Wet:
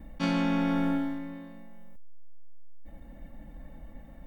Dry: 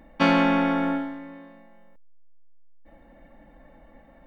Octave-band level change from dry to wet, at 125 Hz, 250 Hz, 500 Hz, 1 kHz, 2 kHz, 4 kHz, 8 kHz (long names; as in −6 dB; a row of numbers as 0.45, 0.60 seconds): −1.0 dB, −4.0 dB, −10.0 dB, −10.5 dB, −10.0 dB, −7.5 dB, can't be measured